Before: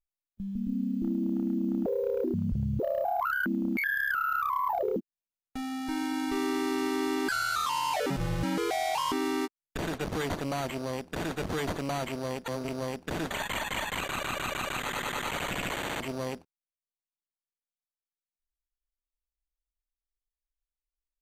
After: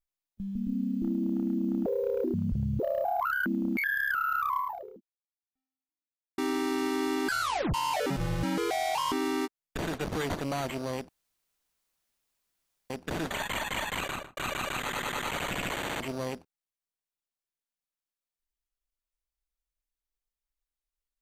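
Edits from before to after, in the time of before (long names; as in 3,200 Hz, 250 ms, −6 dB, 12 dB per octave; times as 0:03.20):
0:04.58–0:06.38: fade out exponential
0:07.41: tape stop 0.33 s
0:11.09–0:12.90: fill with room tone
0:14.08–0:14.37: fade out and dull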